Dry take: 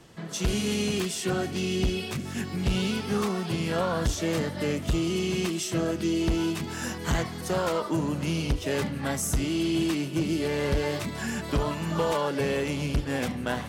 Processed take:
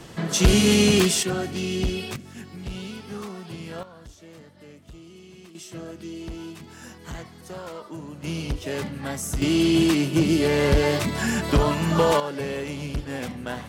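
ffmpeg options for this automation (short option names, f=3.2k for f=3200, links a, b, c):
-af "asetnsamples=n=441:p=0,asendcmd='1.23 volume volume 1dB;2.16 volume volume -8dB;3.83 volume volume -19dB;5.55 volume volume -10dB;8.24 volume volume -1.5dB;9.42 volume volume 7dB;12.2 volume volume -2.5dB',volume=10dB"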